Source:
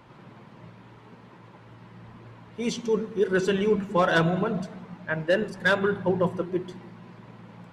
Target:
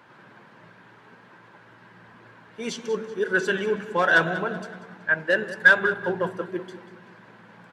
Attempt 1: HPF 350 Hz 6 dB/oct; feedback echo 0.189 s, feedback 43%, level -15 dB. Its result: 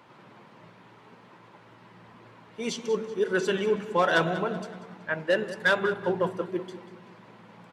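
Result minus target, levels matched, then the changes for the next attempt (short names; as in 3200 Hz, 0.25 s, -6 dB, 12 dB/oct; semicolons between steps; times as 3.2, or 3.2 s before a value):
2000 Hz band -5.0 dB
add after HPF: bell 1600 Hz +11 dB 0.29 oct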